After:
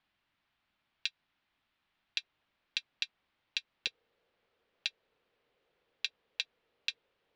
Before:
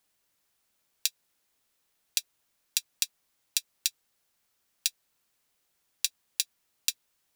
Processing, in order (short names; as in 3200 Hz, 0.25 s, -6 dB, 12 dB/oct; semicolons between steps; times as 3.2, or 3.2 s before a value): LPF 3500 Hz 24 dB/oct; bell 470 Hz -9.5 dB 0.65 oct, from 2.18 s -2 dB, from 3.87 s +13 dB; gain +2 dB